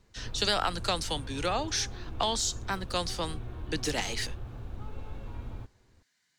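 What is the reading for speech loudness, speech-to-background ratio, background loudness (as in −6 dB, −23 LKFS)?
−31.5 LKFS, 11.5 dB, −43.0 LKFS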